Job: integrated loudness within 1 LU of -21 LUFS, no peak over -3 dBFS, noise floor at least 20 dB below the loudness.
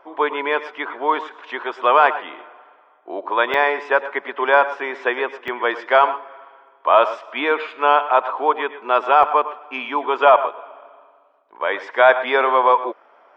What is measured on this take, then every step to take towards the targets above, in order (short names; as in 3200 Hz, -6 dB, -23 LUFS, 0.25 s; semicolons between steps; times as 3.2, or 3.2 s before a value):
dropouts 3; longest dropout 2.2 ms; loudness -18.5 LUFS; peak -1.5 dBFS; loudness target -21.0 LUFS
-> interpolate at 3.54/5.48/9.23, 2.2 ms; gain -2.5 dB